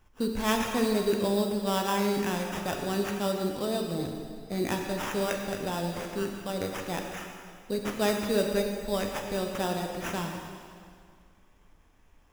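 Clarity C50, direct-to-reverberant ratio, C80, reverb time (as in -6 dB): 3.5 dB, 1.5 dB, 4.5 dB, 2.1 s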